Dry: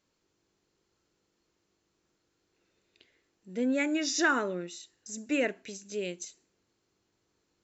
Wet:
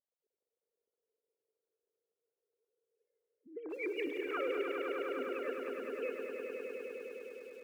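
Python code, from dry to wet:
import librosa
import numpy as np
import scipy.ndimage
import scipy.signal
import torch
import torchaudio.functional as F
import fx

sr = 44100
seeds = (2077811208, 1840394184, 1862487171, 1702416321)

y = fx.sine_speech(x, sr)
y = fx.env_lowpass(y, sr, base_hz=360.0, full_db=-24.5)
y = fx.over_compress(y, sr, threshold_db=-33.0, ratio=-0.5)
y = fx.echo_swell(y, sr, ms=102, loudest=5, wet_db=-6.5)
y = fx.echo_crushed(y, sr, ms=175, feedback_pct=35, bits=8, wet_db=-11.0)
y = F.gain(torch.from_numpy(y), -7.0).numpy()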